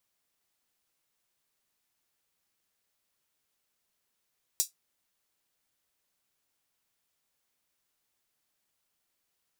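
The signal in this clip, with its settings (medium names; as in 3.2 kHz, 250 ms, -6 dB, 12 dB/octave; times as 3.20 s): closed hi-hat, high-pass 5.7 kHz, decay 0.14 s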